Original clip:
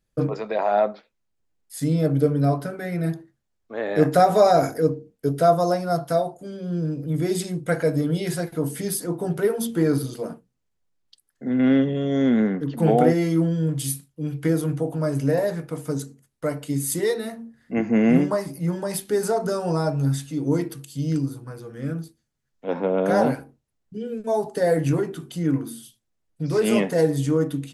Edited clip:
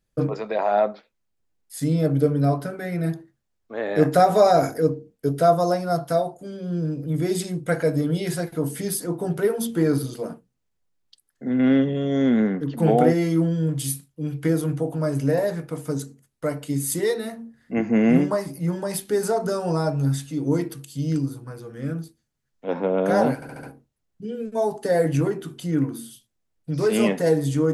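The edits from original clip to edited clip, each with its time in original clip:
23.35 s: stutter 0.07 s, 5 plays

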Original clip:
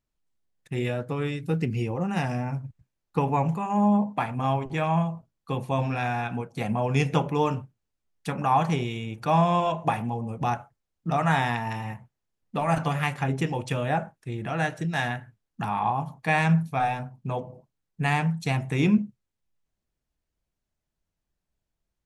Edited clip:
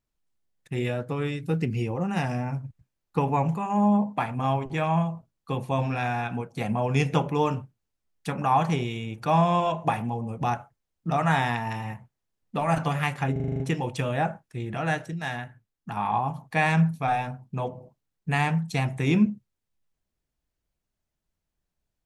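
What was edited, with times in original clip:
13.32 s: stutter 0.04 s, 8 plays
14.78–15.69 s: gain -4.5 dB

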